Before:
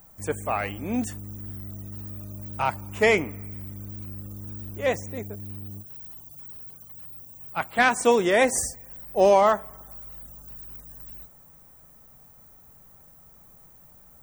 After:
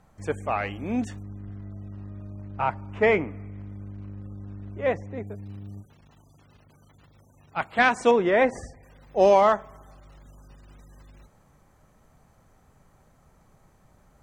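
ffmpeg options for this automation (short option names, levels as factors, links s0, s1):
-af "asetnsamples=n=441:p=0,asendcmd='1.23 lowpass f 2100;5.27 lowpass f 4500;8.11 lowpass f 2200;8.83 lowpass f 5300',lowpass=4400"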